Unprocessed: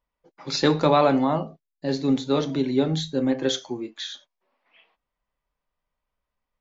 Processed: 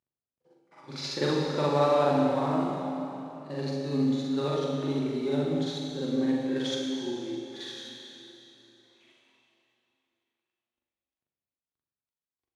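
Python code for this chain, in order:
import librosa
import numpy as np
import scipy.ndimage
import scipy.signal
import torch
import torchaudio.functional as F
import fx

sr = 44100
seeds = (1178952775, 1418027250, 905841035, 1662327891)

y = fx.cvsd(x, sr, bps=64000)
y = scipy.signal.sosfilt(scipy.signal.butter(2, 6500.0, 'lowpass', fs=sr, output='sos'), y)
y = fx.stretch_grains(y, sr, factor=1.9, grain_ms=175.0)
y = scipy.signal.sosfilt(scipy.signal.butter(2, 71.0, 'highpass', fs=sr, output='sos'), y)
y = fx.rev_plate(y, sr, seeds[0], rt60_s=3.3, hf_ratio=0.9, predelay_ms=0, drr_db=-1.0)
y = y * librosa.db_to_amplitude(-8.0)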